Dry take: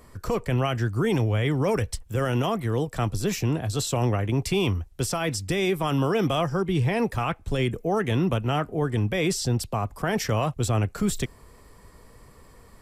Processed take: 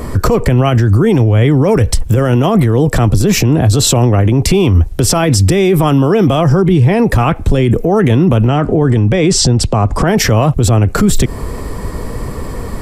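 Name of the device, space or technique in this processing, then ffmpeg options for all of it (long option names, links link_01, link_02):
mastering chain: -filter_complex "[0:a]asettb=1/sr,asplit=3[link_01][link_02][link_03];[link_01]atrim=end=8.474[link_04];[link_02]atrim=start=8.47:end=10.08,asetpts=PTS-STARTPTS,afade=type=in:duration=0.004:curve=qsin,afade=type=out:start_time=1.606:duration=0.004:curve=qsin,lowpass=frequency=8800:width=0.5412,lowpass=frequency=8800:width=1.3066[link_05];[link_03]atrim=start=10.076[link_06];[link_04][link_05]acrossfade=duration=0.004:curve1=hsin:curve2=qsin[link_07];[link_07][link_06]acrossfade=duration=0.004:curve1=qsin:curve2=hsin,equalizer=frequency=290:width_type=o:width=0.77:gain=2,acompressor=threshold=-27dB:ratio=2.5,tiltshelf=frequency=860:gain=4,alimiter=level_in=28dB:limit=-1dB:release=50:level=0:latency=1,volume=-2dB"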